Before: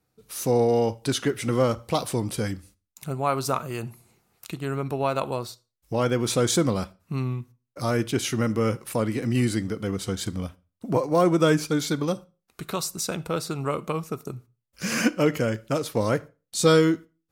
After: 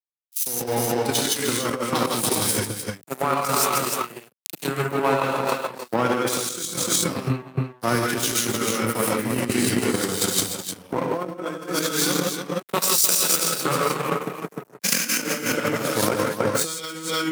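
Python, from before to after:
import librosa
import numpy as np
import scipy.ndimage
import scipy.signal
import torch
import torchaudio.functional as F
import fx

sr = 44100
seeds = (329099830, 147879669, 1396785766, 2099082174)

y = fx.rev_gated(x, sr, seeds[0], gate_ms=190, shape='rising', drr_db=-4.5)
y = np.sign(y) * np.maximum(np.abs(y) - 10.0 ** (-30.0 / 20.0), 0.0)
y = fx.dynamic_eq(y, sr, hz=560.0, q=1.2, threshold_db=-32.0, ratio=4.0, max_db=-7)
y = y + 10.0 ** (-3.5 / 20.0) * np.pad(y, (int(304 * sr / 1000.0), 0))[:len(y)]
y = fx.transient(y, sr, attack_db=8, sustain_db=-4)
y = scipy.signal.sosfilt(scipy.signal.bessel(2, 250.0, 'highpass', norm='mag', fs=sr, output='sos'), y)
y = fx.high_shelf(y, sr, hz=9400.0, db=11.5)
y = fx.over_compress(y, sr, threshold_db=-25.0, ratio=-1.0)
y = fx.band_widen(y, sr, depth_pct=100)
y = y * 10.0 ** (2.0 / 20.0)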